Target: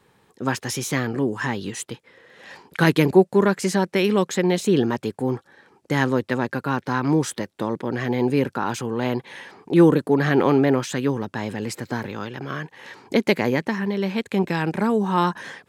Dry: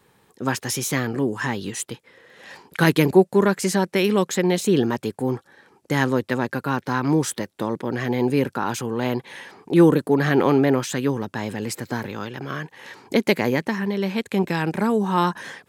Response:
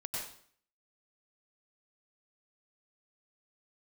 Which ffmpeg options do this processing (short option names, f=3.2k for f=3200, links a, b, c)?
-af "highshelf=f=9.4k:g=-8.5"